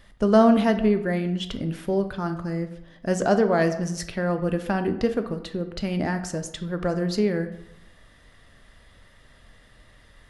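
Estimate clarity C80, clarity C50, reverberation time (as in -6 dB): 13.5 dB, 11.5 dB, 0.85 s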